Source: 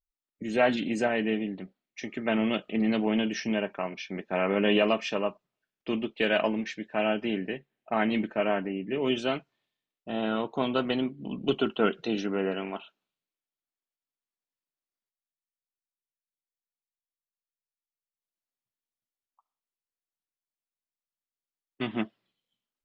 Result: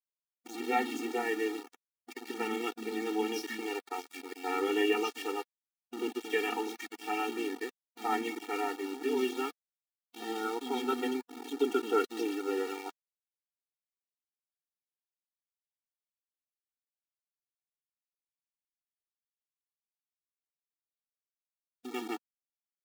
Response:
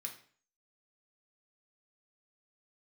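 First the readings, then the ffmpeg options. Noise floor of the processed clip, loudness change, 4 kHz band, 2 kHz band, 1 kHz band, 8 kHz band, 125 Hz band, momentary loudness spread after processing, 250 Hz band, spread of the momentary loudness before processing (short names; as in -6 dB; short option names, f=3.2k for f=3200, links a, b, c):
under -85 dBFS, -5.5 dB, -6.0 dB, -5.0 dB, -1.5 dB, n/a, under -20 dB, 12 LU, -7.5 dB, 11 LU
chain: -filter_complex "[0:a]acrossover=split=260|3600[a][b][c];[a]adelay=40[d];[b]adelay=130[e];[d][e][c]amix=inputs=3:normalize=0,aeval=exprs='val(0)*gte(abs(val(0)),0.0178)':c=same,afftfilt=real='re*eq(mod(floor(b*sr/1024/240),2),1)':imag='im*eq(mod(floor(b*sr/1024/240),2),1)':win_size=1024:overlap=0.75"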